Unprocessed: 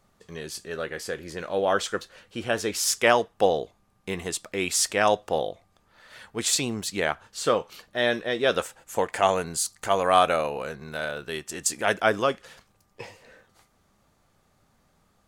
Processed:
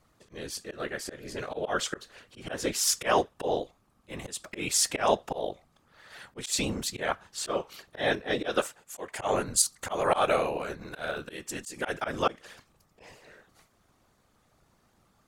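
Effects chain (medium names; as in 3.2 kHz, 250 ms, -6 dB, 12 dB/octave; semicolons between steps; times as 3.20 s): whisper effect; slow attack 143 ms; 8.15–9.62 s: three bands expanded up and down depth 70%; trim -1 dB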